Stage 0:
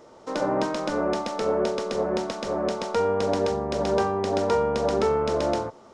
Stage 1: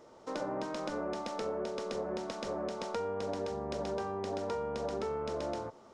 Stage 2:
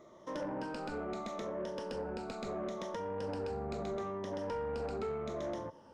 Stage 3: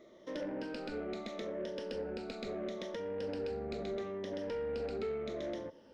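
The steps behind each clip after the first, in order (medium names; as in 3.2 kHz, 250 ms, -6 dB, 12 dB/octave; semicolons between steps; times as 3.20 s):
compression 4:1, threshold -27 dBFS, peak gain reduction 7.5 dB; trim -6.5 dB
drifting ripple filter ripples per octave 1.2, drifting -0.75 Hz, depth 12 dB; tone controls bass +5 dB, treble -4 dB; saturation -28.5 dBFS, distortion -17 dB; trim -3 dB
ten-band graphic EQ 125 Hz -7 dB, 250 Hz +3 dB, 500 Hz +4 dB, 1 kHz -11 dB, 2 kHz +5 dB, 4 kHz +6 dB, 8 kHz -7 dB; trim -1.5 dB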